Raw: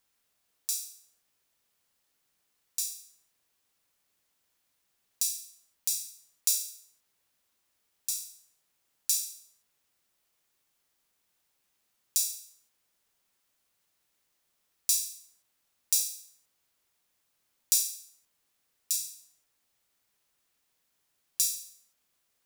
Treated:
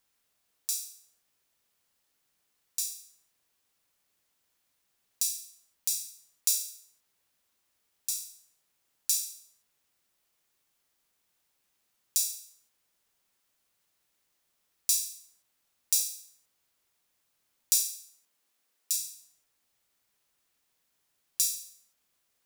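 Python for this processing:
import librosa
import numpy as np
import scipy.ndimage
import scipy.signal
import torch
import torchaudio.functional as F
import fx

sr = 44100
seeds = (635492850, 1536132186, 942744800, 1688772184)

y = fx.highpass(x, sr, hz=fx.line((17.75, 120.0), (18.98, 280.0)), slope=12, at=(17.75, 18.98), fade=0.02)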